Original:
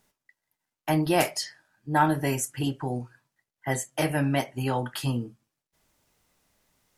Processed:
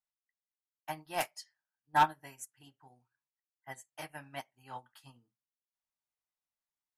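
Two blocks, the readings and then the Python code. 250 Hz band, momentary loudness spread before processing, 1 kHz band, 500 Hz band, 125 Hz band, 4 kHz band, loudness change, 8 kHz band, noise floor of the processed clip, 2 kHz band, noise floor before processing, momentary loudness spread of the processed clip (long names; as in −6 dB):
−23.5 dB, 14 LU, −4.5 dB, −16.5 dB, −23.5 dB, −11.5 dB, −7.5 dB, −15.0 dB, below −85 dBFS, −8.5 dB, below −85 dBFS, 21 LU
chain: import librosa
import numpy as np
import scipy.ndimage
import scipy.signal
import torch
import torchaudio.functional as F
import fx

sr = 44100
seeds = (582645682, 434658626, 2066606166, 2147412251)

y = fx.low_shelf_res(x, sr, hz=630.0, db=-8.0, q=1.5)
y = np.clip(10.0 ** (16.0 / 20.0) * y, -1.0, 1.0) / 10.0 ** (16.0 / 20.0)
y = fx.upward_expand(y, sr, threshold_db=-37.0, expansion=2.5)
y = y * librosa.db_to_amplitude(-1.5)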